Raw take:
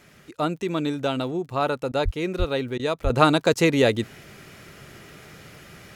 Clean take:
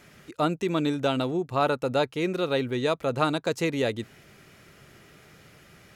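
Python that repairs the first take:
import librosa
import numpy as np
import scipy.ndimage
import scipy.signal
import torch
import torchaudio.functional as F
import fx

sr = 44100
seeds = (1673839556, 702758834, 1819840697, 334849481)

y = fx.fix_declick_ar(x, sr, threshold=6.5)
y = fx.fix_deplosive(y, sr, at_s=(2.04, 2.38, 3.03))
y = fx.fix_interpolate(y, sr, at_s=(1.92, 2.78, 3.54), length_ms=13.0)
y = fx.gain(y, sr, db=fx.steps((0.0, 0.0), (3.1, -7.5)))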